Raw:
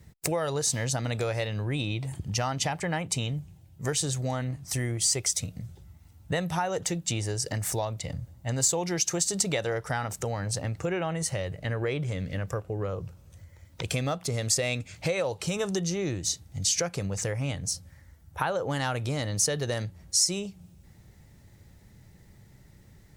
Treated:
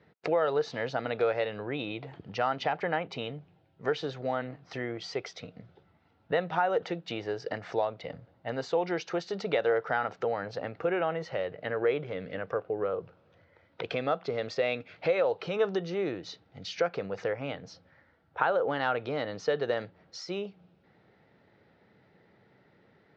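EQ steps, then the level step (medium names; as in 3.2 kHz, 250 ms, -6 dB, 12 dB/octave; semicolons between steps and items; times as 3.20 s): distance through air 200 m; cabinet simulation 270–4500 Hz, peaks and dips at 460 Hz +6 dB, 710 Hz +4 dB, 1.4 kHz +6 dB; 0.0 dB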